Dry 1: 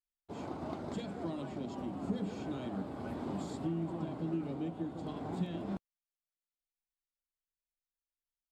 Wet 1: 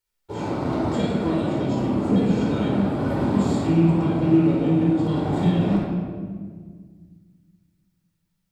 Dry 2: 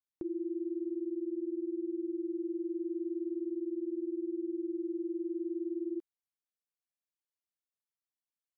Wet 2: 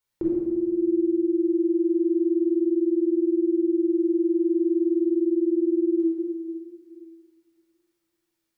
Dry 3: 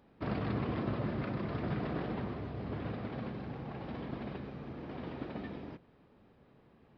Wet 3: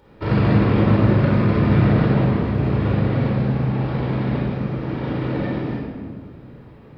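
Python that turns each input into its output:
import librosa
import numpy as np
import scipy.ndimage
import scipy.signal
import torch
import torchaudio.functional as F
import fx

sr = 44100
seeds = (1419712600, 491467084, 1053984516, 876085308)

y = fx.rattle_buzz(x, sr, strikes_db=-36.0, level_db=-46.0)
y = fx.room_shoebox(y, sr, seeds[0], volume_m3=2100.0, walls='mixed', distance_m=4.5)
y = F.gain(torch.from_numpy(y), 8.5).numpy()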